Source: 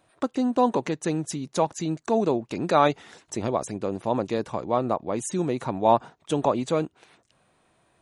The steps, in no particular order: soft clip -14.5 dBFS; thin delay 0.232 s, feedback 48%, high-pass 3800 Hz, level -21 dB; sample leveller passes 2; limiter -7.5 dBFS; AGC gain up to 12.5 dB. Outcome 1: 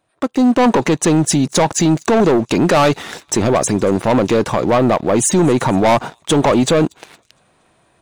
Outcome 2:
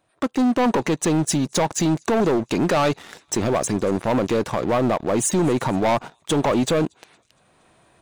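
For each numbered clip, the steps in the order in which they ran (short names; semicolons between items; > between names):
thin delay > soft clip > AGC > sample leveller > limiter; thin delay > sample leveller > AGC > limiter > soft clip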